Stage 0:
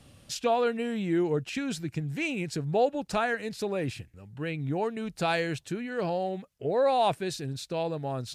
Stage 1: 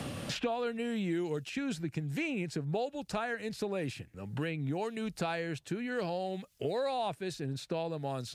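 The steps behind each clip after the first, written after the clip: three bands compressed up and down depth 100%; trim -6.5 dB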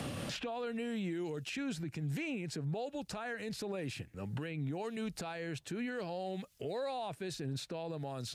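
peak limiter -32 dBFS, peak gain reduction 11.5 dB; trim +1 dB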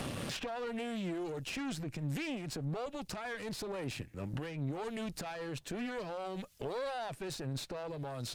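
single-diode clipper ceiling -47.5 dBFS; trim +4 dB

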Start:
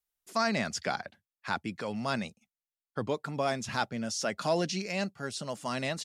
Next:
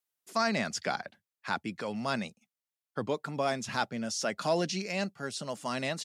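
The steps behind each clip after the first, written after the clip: high-pass 120 Hz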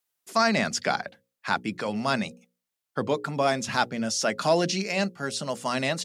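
hum notches 60/120/180/240/300/360/420/480/540 Hz; trim +6.5 dB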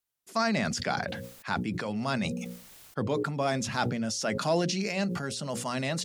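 bass shelf 140 Hz +11.5 dB; decay stretcher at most 37 dB/s; trim -6 dB

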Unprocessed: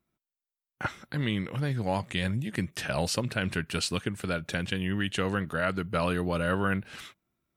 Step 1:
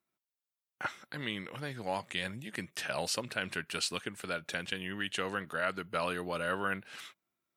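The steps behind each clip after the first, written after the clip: high-pass 540 Hz 6 dB/octave; trim -2.5 dB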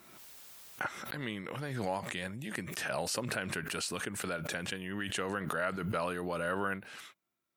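dynamic bell 3.4 kHz, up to -7 dB, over -50 dBFS, Q 0.85; swell ahead of each attack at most 30 dB/s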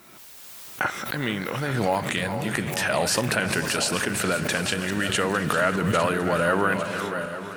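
backward echo that repeats 427 ms, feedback 61%, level -9 dB; level rider gain up to 4.5 dB; echo that smears into a reverb 462 ms, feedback 47%, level -14 dB; trim +6.5 dB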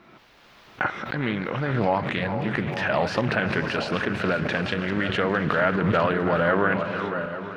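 distance through air 290 m; loudspeaker Doppler distortion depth 0.28 ms; trim +2 dB

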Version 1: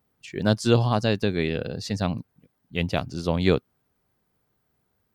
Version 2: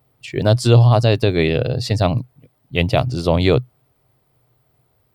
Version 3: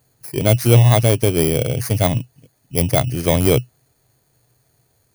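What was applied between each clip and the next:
graphic EQ with 31 bands 125 Hz +11 dB, 200 Hz -12 dB, 630 Hz +5 dB, 1.6 kHz -6 dB, 6.3 kHz -7 dB; in parallel at -3 dB: compressor with a negative ratio -23 dBFS, ratio -1; on the sum: trim +3 dB
bit-reversed sample order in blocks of 16 samples

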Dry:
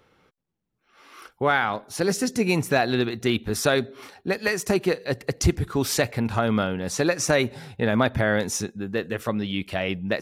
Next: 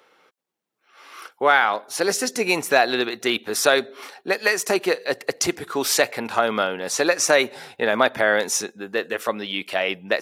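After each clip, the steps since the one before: high-pass 450 Hz 12 dB/octave; trim +5.5 dB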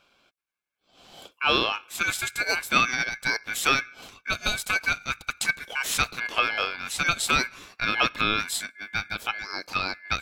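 small resonant body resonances 230/340/680 Hz, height 7 dB, ringing for 85 ms; ring modulator 1.9 kHz; trim -3.5 dB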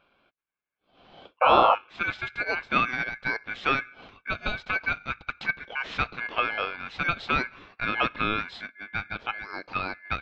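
painted sound noise, 1.41–1.75 s, 490–1400 Hz -18 dBFS; Gaussian low-pass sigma 2.7 samples

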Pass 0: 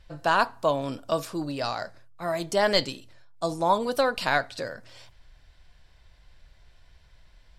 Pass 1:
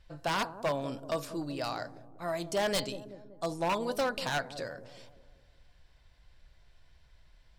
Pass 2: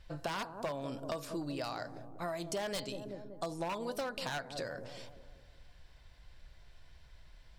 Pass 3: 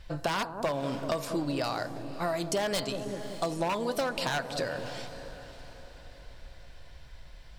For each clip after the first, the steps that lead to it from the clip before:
feedback echo behind a low-pass 190 ms, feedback 49%, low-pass 480 Hz, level -9.5 dB; wavefolder -17.5 dBFS; trim -5.5 dB
compression 6:1, threshold -39 dBFS, peak gain reduction 12 dB; trim +3.5 dB
echo that smears into a reverb 585 ms, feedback 45%, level -13.5 dB; trim +7.5 dB

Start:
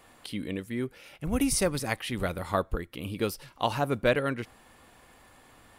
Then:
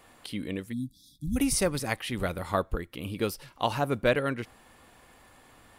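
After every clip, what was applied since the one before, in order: spectral selection erased 0.73–1.36 s, 310–3300 Hz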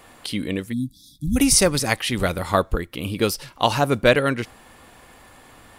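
dynamic bell 5.9 kHz, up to +6 dB, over -50 dBFS, Q 0.73; trim +8 dB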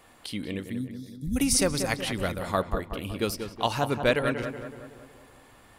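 filtered feedback delay 186 ms, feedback 55%, low-pass 2.1 kHz, level -7.5 dB; trim -7.5 dB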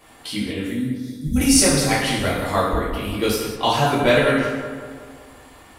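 gated-style reverb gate 240 ms falling, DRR -7 dB; trim +1 dB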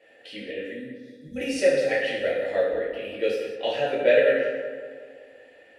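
vowel filter e; trim +6 dB

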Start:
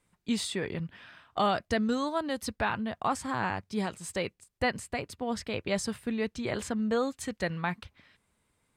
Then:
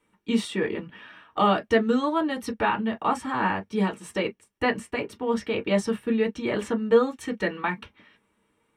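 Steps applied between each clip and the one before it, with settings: reverberation, pre-delay 3 ms, DRR 1 dB; trim -3.5 dB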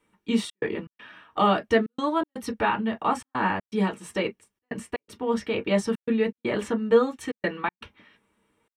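trance gate "xxxx.xx.xxx" 121 bpm -60 dB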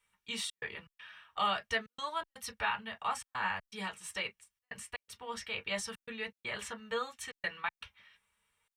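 amplifier tone stack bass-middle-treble 10-0-10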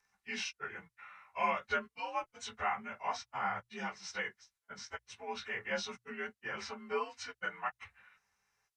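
frequency axis rescaled in octaves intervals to 88%; hum notches 60/120 Hz; trim +1 dB

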